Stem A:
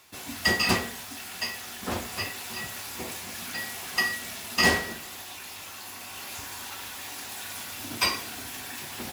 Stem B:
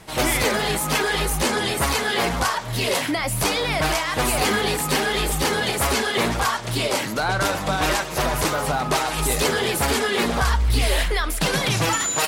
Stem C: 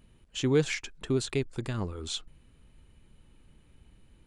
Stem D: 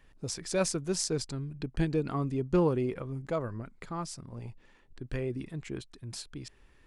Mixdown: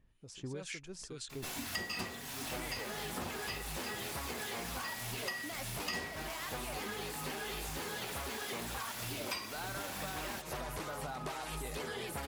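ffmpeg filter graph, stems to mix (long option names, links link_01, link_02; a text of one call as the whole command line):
ffmpeg -i stem1.wav -i stem2.wav -i stem3.wav -i stem4.wav -filter_complex "[0:a]adelay=1300,volume=2dB[link_01];[1:a]acrossover=split=3600[link_02][link_03];[link_03]acompressor=threshold=-31dB:ratio=4:attack=1:release=60[link_04];[link_02][link_04]amix=inputs=2:normalize=0,highshelf=frequency=9200:gain=6.5,adelay=2350,volume=-10.5dB[link_05];[2:a]equalizer=frequency=320:width_type=o:width=2.4:gain=-5.5,acrossover=split=1200[link_06][link_07];[link_06]aeval=exprs='val(0)*(1-1/2+1/2*cos(2*PI*2.1*n/s))':channel_layout=same[link_08];[link_07]aeval=exprs='val(0)*(1-1/2-1/2*cos(2*PI*2.1*n/s))':channel_layout=same[link_09];[link_08][link_09]amix=inputs=2:normalize=0,volume=-7.5dB[link_10];[3:a]volume=-16.5dB[link_11];[link_01][link_05][link_10][link_11]amix=inputs=4:normalize=0,acompressor=threshold=-38dB:ratio=6" out.wav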